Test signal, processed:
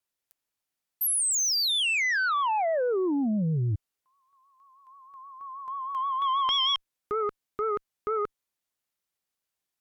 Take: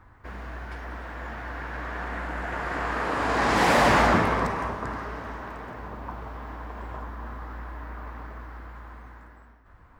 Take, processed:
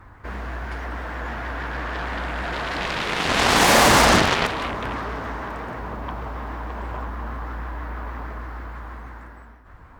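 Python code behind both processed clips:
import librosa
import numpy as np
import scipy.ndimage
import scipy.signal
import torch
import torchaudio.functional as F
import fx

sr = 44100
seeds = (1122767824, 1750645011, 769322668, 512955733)

y = fx.vibrato(x, sr, rate_hz=6.3, depth_cents=70.0)
y = fx.cheby_harmonics(y, sr, harmonics=(4, 7), levels_db=(-32, -9), full_scale_db=-12.0)
y = y * librosa.db_to_amplitude(4.0)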